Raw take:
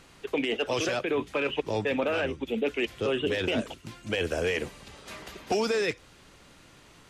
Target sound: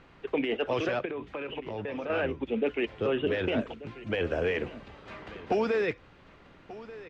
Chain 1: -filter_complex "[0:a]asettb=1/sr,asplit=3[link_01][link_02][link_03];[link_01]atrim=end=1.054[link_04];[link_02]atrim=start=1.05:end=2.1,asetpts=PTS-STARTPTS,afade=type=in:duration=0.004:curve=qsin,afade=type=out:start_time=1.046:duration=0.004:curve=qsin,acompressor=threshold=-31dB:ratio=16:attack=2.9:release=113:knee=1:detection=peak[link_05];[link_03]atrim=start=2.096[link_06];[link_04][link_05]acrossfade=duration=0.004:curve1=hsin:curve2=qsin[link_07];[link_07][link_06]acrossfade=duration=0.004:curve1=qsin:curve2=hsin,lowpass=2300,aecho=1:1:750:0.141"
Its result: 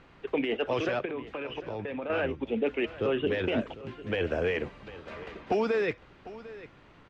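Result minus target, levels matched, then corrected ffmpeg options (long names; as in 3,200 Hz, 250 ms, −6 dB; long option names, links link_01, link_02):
echo 436 ms early
-filter_complex "[0:a]asettb=1/sr,asplit=3[link_01][link_02][link_03];[link_01]atrim=end=1.054[link_04];[link_02]atrim=start=1.05:end=2.1,asetpts=PTS-STARTPTS,afade=type=in:duration=0.004:curve=qsin,afade=type=out:start_time=1.046:duration=0.004:curve=qsin,acompressor=threshold=-31dB:ratio=16:attack=2.9:release=113:knee=1:detection=peak[link_05];[link_03]atrim=start=2.096[link_06];[link_04][link_05]acrossfade=duration=0.004:curve1=hsin:curve2=qsin[link_07];[link_07][link_06]acrossfade=duration=0.004:curve1=qsin:curve2=hsin,lowpass=2300,aecho=1:1:1186:0.141"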